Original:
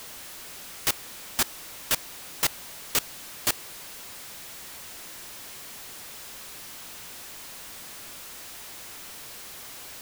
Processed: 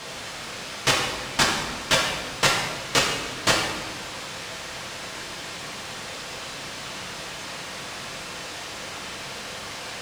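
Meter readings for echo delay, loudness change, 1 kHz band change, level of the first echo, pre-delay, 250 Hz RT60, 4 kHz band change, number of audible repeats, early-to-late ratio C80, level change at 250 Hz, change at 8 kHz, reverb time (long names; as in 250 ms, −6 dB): no echo audible, +6.5 dB, +12.5 dB, no echo audible, 3 ms, 1.6 s, +9.5 dB, no echo audible, 4.5 dB, +12.0 dB, +3.0 dB, 1.3 s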